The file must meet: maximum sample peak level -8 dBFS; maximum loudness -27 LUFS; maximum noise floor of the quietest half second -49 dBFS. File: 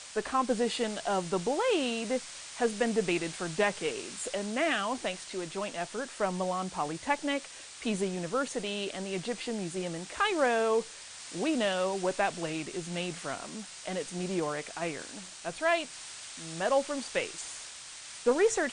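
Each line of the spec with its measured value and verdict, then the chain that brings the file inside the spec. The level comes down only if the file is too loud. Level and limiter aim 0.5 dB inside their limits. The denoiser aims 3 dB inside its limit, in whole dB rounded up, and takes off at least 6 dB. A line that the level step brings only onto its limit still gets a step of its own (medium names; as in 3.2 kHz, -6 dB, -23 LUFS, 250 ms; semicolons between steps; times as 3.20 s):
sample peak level -15.5 dBFS: pass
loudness -32.0 LUFS: pass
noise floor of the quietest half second -46 dBFS: fail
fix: noise reduction 6 dB, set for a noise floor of -46 dBFS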